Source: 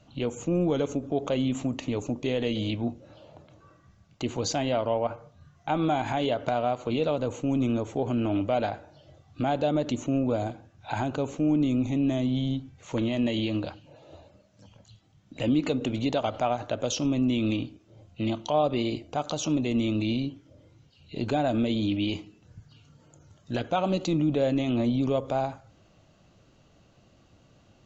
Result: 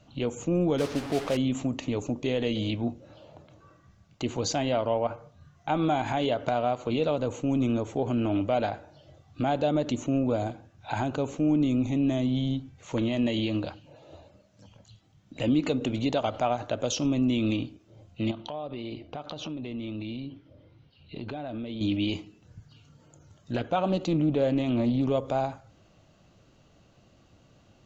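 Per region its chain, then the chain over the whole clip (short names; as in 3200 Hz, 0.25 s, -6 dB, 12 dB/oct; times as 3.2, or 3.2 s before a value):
0.78–1.37 delta modulation 32 kbps, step -30 dBFS + modulation noise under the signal 12 dB + air absorption 64 m
18.31–21.81 LPF 4300 Hz 24 dB/oct + compressor 5:1, threshold -33 dBFS
23.52–25.12 high shelf 5200 Hz -9 dB + Doppler distortion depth 0.12 ms
whole clip: dry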